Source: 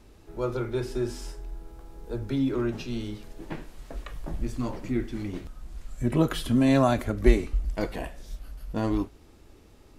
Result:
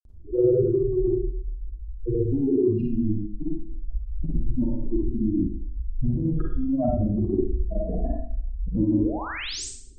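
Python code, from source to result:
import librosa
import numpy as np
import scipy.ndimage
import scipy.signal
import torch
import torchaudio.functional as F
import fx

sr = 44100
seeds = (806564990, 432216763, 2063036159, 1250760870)

y = fx.spec_expand(x, sr, power=3.6)
y = fx.env_lowpass_down(y, sr, base_hz=1100.0, full_db=-24.0)
y = fx.peak_eq(y, sr, hz=2000.0, db=-15.0, octaves=1.9)
y = fx.over_compress(y, sr, threshold_db=-29.0, ratio=-1.0)
y = fx.granulator(y, sr, seeds[0], grain_ms=100.0, per_s=20.0, spray_ms=100.0, spread_st=0)
y = fx.spec_paint(y, sr, seeds[1], shape='rise', start_s=8.91, length_s=0.74, low_hz=230.0, high_hz=8900.0, level_db=-43.0)
y = fx.rev_schroeder(y, sr, rt60_s=0.55, comb_ms=38, drr_db=-1.5)
y = F.gain(torch.from_numpy(y), 6.5).numpy()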